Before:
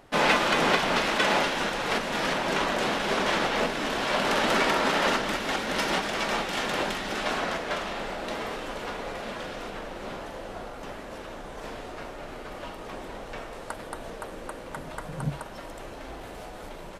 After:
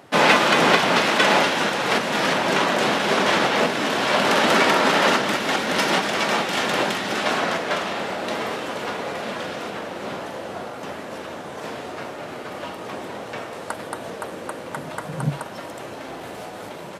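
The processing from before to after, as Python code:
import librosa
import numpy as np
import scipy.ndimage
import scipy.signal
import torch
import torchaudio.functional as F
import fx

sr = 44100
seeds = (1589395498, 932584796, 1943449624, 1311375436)

y = scipy.signal.sosfilt(scipy.signal.butter(4, 99.0, 'highpass', fs=sr, output='sos'), x)
y = y * 10.0 ** (6.5 / 20.0)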